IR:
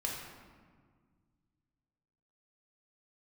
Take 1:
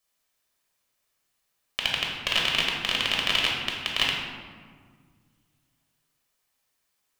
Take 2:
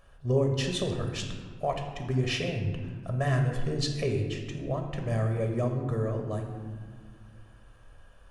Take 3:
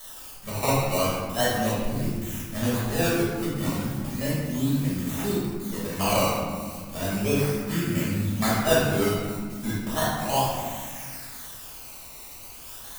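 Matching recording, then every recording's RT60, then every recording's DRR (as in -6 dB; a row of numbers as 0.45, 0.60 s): 1; 1.7, 1.8, 1.7 s; -2.5, 3.0, -8.5 dB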